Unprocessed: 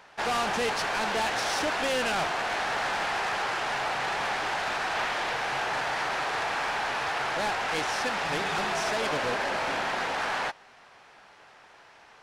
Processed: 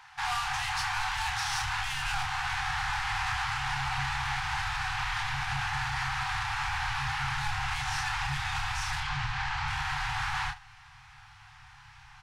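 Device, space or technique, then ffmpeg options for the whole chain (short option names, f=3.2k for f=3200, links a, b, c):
clipper into limiter: -filter_complex "[0:a]asettb=1/sr,asplit=3[a][b][c];[a]atrim=end=9.004[d];[b]atrim=start=9:end=9.68,asetpts=PTS-STARTPTS,afade=t=in:d=0.004:c=qsin,afade=t=out:st=0.676:d=0.004:c=qsin,lowpass=5.9k[e];[c]atrim=start=9.676[f];[d][e]acrossfade=d=0.004:c1=hsin:c2=qsin[g];[g][f]acrossfade=d=0.004:c1=qsin:c2=hsin,afftfilt=real='re*(1-between(b*sr/4096,140,730))':imag='im*(1-between(b*sr/4096,140,730))':win_size=4096:overlap=0.75,asubboost=boost=11:cutoff=140,asoftclip=type=hard:threshold=-18.5dB,alimiter=level_in=0.5dB:limit=-24dB:level=0:latency=1:release=87,volume=-0.5dB,aecho=1:1:29|76:0.562|0.15"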